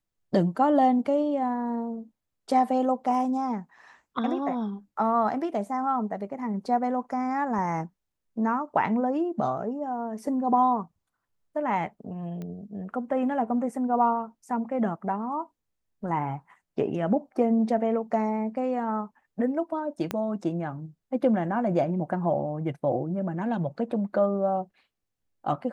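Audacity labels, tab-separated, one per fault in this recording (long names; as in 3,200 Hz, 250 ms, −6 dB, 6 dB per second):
12.420000	12.420000	click −26 dBFS
20.110000	20.110000	click −14 dBFS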